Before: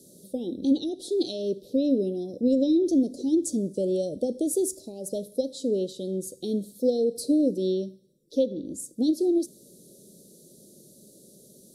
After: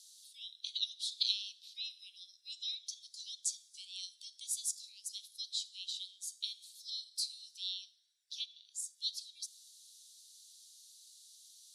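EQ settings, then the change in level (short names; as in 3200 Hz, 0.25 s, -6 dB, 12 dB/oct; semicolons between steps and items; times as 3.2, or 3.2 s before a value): brick-wall FIR high-pass 1400 Hz; tape spacing loss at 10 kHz 20 dB; +13.5 dB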